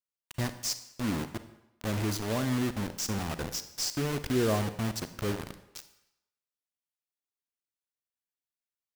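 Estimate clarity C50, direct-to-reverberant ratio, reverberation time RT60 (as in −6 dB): 12.0 dB, 11.0 dB, 0.85 s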